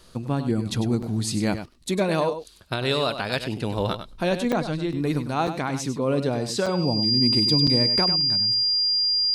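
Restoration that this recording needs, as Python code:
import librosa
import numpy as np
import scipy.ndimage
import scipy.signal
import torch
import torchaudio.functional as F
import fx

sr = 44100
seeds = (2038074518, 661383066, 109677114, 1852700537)

y = fx.notch(x, sr, hz=4800.0, q=30.0)
y = fx.fix_interpolate(y, sr, at_s=(1.02, 1.74, 2.44, 4.52, 5.47, 6.66, 7.67), length_ms=5.3)
y = fx.fix_echo_inverse(y, sr, delay_ms=99, level_db=-10.0)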